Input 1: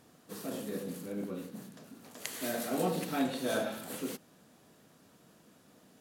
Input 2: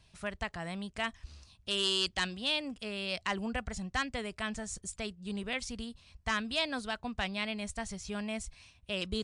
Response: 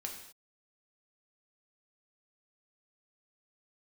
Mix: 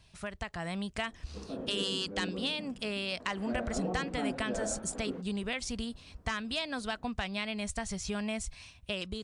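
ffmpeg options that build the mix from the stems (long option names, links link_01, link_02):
-filter_complex "[0:a]lowpass=1100,alimiter=level_in=1.5dB:limit=-24dB:level=0:latency=1:release=325,volume=-1.5dB,adelay=1050,volume=-4.5dB[link_01];[1:a]acompressor=threshold=-37dB:ratio=6,volume=2dB[link_02];[link_01][link_02]amix=inputs=2:normalize=0,dynaudnorm=framelen=370:gausssize=3:maxgain=4dB"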